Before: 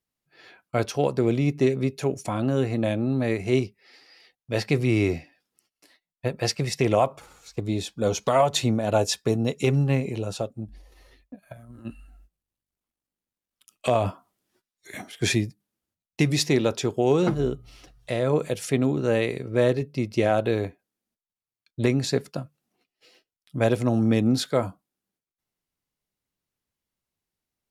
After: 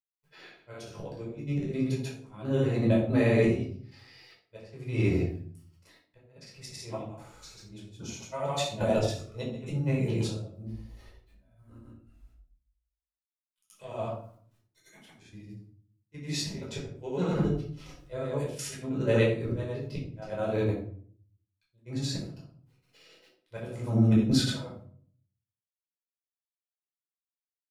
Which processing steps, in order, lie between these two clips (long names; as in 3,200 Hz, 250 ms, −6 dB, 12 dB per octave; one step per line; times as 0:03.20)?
bit-depth reduction 12 bits, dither none
volume swells 591 ms
granular cloud, pitch spread up and down by 0 semitones
gate pattern "xxxxxx..xx" 184 BPM −12 dB
rectangular room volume 590 cubic metres, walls furnished, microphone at 4.9 metres
level −5 dB